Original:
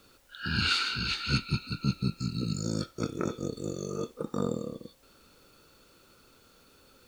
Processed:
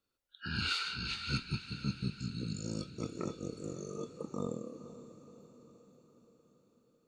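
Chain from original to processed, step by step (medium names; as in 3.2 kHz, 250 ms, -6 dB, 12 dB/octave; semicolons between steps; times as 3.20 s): spectral noise reduction 20 dB; echo that smears into a reverb 513 ms, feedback 55%, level -13 dB; trim -7 dB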